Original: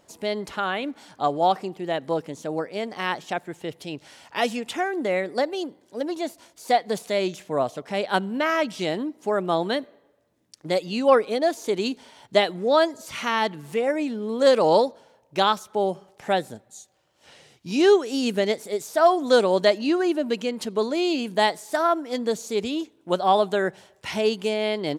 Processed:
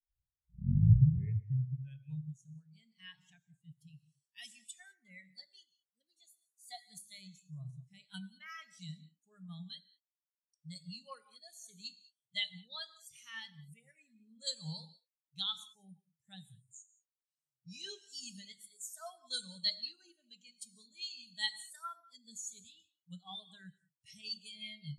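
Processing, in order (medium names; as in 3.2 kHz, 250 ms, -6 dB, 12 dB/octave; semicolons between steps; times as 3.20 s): tape start-up on the opening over 2.27 s; FFT filter 150 Hz 0 dB, 300 Hz -29 dB, 570 Hz -27 dB, 1.9 kHz -8 dB, 4.8 kHz +3 dB, 9 kHz +13 dB; gated-style reverb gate 240 ms flat, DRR 4.5 dB; spectral contrast expander 2.5:1; trim -3 dB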